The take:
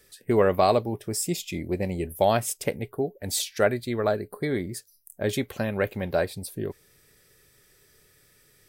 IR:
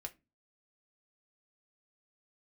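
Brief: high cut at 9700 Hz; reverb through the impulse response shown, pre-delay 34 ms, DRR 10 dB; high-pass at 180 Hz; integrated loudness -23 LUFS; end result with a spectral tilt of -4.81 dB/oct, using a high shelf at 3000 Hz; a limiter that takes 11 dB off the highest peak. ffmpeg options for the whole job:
-filter_complex "[0:a]highpass=180,lowpass=9.7k,highshelf=f=3k:g=-7,alimiter=limit=-19.5dB:level=0:latency=1,asplit=2[a][b];[1:a]atrim=start_sample=2205,adelay=34[c];[b][c]afir=irnorm=-1:irlink=0,volume=-6.5dB[d];[a][d]amix=inputs=2:normalize=0,volume=9dB"

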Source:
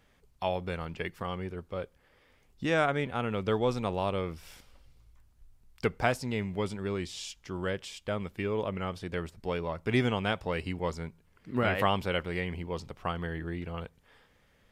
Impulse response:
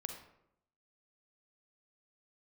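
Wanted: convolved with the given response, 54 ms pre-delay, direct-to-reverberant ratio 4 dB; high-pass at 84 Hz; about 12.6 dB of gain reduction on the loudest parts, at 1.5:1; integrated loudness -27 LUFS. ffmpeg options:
-filter_complex "[0:a]highpass=84,acompressor=threshold=-58dB:ratio=1.5,asplit=2[a][b];[1:a]atrim=start_sample=2205,adelay=54[c];[b][c]afir=irnorm=-1:irlink=0,volume=-2.5dB[d];[a][d]amix=inputs=2:normalize=0,volume=15.5dB"

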